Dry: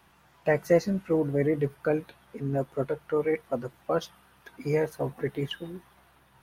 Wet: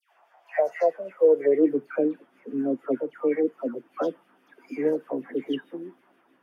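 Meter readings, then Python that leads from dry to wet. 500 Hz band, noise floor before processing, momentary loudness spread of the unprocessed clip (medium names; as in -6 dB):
+3.5 dB, -61 dBFS, 13 LU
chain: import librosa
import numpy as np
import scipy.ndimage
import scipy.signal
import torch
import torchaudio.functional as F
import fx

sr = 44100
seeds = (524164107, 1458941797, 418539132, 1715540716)

y = fx.filter_sweep_highpass(x, sr, from_hz=690.0, to_hz=270.0, start_s=0.8, end_s=1.7, q=4.2)
y = fx.bass_treble(y, sr, bass_db=-7, treble_db=-11)
y = fx.notch(y, sr, hz=4000.0, q=5.1)
y = fx.rotary(y, sr, hz=6.3)
y = fx.dispersion(y, sr, late='lows', ms=126.0, hz=1400.0)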